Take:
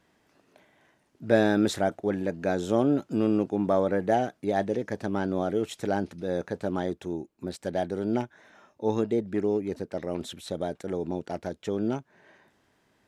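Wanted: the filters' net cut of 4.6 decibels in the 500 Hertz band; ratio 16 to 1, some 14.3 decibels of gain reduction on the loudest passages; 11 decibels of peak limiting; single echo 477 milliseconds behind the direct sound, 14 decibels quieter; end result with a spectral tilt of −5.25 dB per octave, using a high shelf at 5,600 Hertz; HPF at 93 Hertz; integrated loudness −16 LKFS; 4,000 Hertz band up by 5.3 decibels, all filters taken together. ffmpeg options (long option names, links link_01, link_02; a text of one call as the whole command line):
ffmpeg -i in.wav -af "highpass=93,equalizer=frequency=500:width_type=o:gain=-6,equalizer=frequency=4000:width_type=o:gain=7.5,highshelf=frequency=5600:gain=-4,acompressor=threshold=-33dB:ratio=16,alimiter=level_in=7.5dB:limit=-24dB:level=0:latency=1,volume=-7.5dB,aecho=1:1:477:0.2,volume=27dB" out.wav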